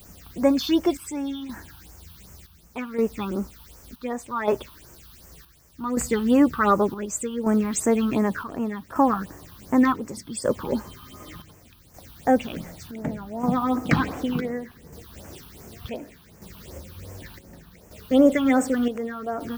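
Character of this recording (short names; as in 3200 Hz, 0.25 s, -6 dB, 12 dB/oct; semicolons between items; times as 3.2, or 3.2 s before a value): a quantiser's noise floor 8-bit, dither triangular; chopped level 0.67 Hz, depth 60%, duty 65%; phasing stages 6, 2.7 Hz, lowest notch 520–3800 Hz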